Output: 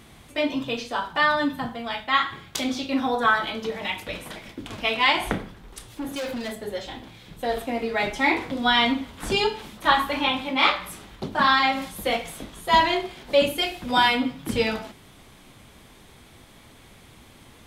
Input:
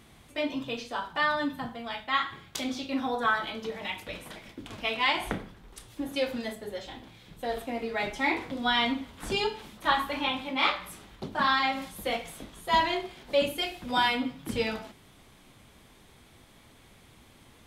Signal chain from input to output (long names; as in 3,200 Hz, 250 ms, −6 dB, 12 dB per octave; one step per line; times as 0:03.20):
0:05.89–0:06.64: gain into a clipping stage and back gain 33.5 dB
level +6 dB